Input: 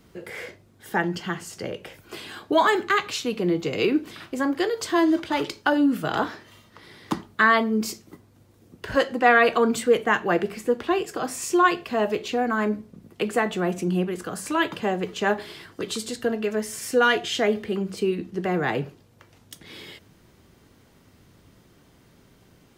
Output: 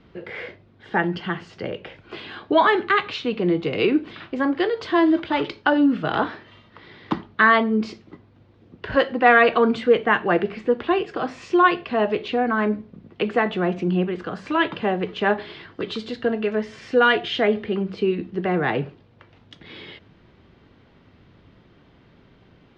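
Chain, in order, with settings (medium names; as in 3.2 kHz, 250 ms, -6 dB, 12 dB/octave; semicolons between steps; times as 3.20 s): low-pass 3.8 kHz 24 dB/octave; trim +2.5 dB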